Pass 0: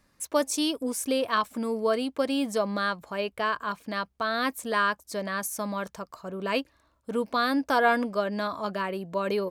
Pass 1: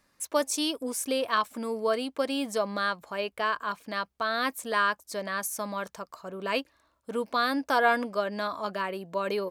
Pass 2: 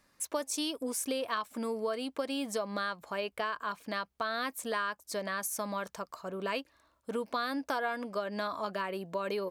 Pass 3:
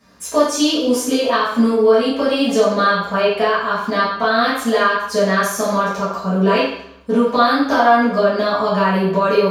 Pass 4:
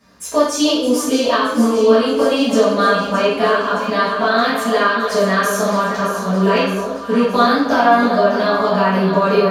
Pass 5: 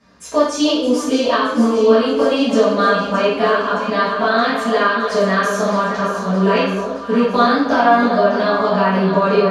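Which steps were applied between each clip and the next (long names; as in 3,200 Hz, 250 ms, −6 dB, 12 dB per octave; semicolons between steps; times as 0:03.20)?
low-shelf EQ 250 Hz −8.5 dB
downward compressor 4 to 1, threshold −31 dBFS, peak gain reduction 12 dB
convolution reverb RT60 0.70 s, pre-delay 3 ms, DRR −12 dB; level −1 dB
delay that swaps between a low-pass and a high-pass 309 ms, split 950 Hz, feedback 76%, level −7 dB
high-frequency loss of the air 62 metres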